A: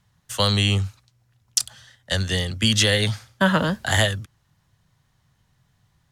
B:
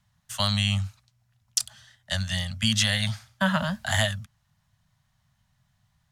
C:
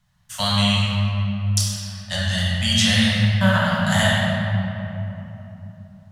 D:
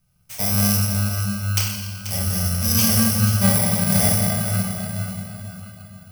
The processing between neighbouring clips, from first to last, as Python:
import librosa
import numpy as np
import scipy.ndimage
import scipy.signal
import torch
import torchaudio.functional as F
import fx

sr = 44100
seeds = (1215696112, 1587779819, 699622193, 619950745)

y1 = scipy.signal.sosfilt(scipy.signal.ellip(3, 1.0, 40, [230.0, 600.0], 'bandstop', fs=sr, output='sos'), x)
y1 = y1 * 10.0 ** (-4.0 / 20.0)
y2 = fx.room_shoebox(y1, sr, seeds[0], volume_m3=170.0, walls='hard', distance_m=0.97)
y3 = fx.bit_reversed(y2, sr, seeds[1], block=32)
y3 = fx.echo_feedback(y3, sr, ms=485, feedback_pct=34, wet_db=-11)